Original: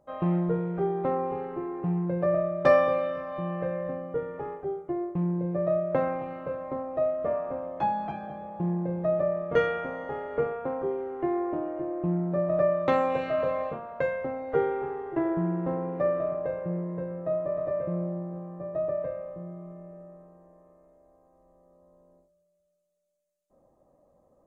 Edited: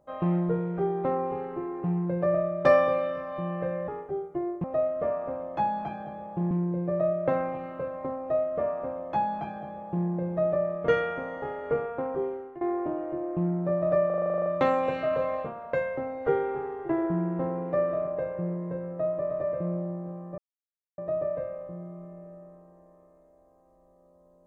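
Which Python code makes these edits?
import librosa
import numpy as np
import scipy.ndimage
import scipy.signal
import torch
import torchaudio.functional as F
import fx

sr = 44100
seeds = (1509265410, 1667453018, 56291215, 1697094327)

y = fx.edit(x, sr, fx.cut(start_s=3.88, length_s=0.54),
    fx.duplicate(start_s=6.87, length_s=1.87, to_s=5.18),
    fx.fade_out_to(start_s=10.94, length_s=0.34, floor_db=-19.0),
    fx.stutter(start_s=12.73, slice_s=0.04, count=11),
    fx.insert_silence(at_s=18.65, length_s=0.6), tone=tone)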